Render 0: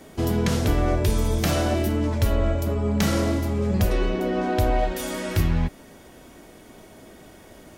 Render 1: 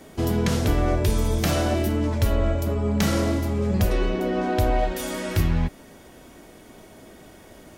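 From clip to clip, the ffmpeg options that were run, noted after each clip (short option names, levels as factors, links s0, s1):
-af anull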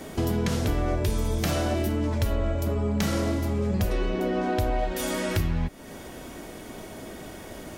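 -af "acompressor=threshold=0.02:ratio=2.5,volume=2.11"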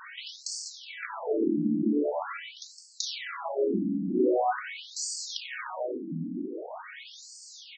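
-filter_complex "[0:a]asoftclip=type=tanh:threshold=0.0944,asplit=2[s0][s1];[s1]adelay=565,lowpass=f=4300:p=1,volume=0.473,asplit=2[s2][s3];[s3]adelay=565,lowpass=f=4300:p=1,volume=0.47,asplit=2[s4][s5];[s5]adelay=565,lowpass=f=4300:p=1,volume=0.47,asplit=2[s6][s7];[s7]adelay=565,lowpass=f=4300:p=1,volume=0.47,asplit=2[s8][s9];[s9]adelay=565,lowpass=f=4300:p=1,volume=0.47,asplit=2[s10][s11];[s11]adelay=565,lowpass=f=4300:p=1,volume=0.47[s12];[s0][s2][s4][s6][s8][s10][s12]amix=inputs=7:normalize=0,afftfilt=real='re*between(b*sr/1024,220*pow(6200/220,0.5+0.5*sin(2*PI*0.44*pts/sr))/1.41,220*pow(6200/220,0.5+0.5*sin(2*PI*0.44*pts/sr))*1.41)':imag='im*between(b*sr/1024,220*pow(6200/220,0.5+0.5*sin(2*PI*0.44*pts/sr))/1.41,220*pow(6200/220,0.5+0.5*sin(2*PI*0.44*pts/sr))*1.41)':win_size=1024:overlap=0.75,volume=2.37"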